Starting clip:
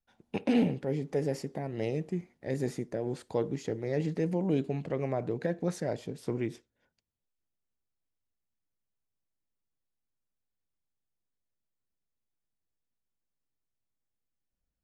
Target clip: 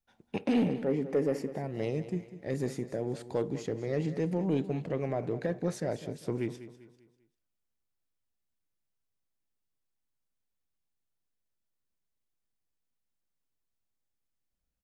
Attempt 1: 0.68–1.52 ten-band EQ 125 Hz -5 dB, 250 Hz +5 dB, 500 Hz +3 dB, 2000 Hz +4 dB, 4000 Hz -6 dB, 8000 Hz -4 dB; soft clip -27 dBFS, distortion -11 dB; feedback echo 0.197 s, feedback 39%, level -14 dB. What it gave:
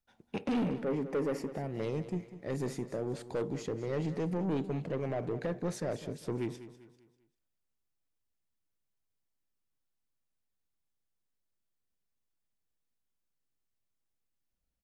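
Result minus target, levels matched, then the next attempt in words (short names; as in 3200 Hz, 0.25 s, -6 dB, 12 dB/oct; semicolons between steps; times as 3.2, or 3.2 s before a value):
soft clip: distortion +12 dB
0.68–1.52 ten-band EQ 125 Hz -5 dB, 250 Hz +5 dB, 500 Hz +3 dB, 2000 Hz +4 dB, 4000 Hz -6 dB, 8000 Hz -4 dB; soft clip -17.5 dBFS, distortion -23 dB; feedback echo 0.197 s, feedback 39%, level -14 dB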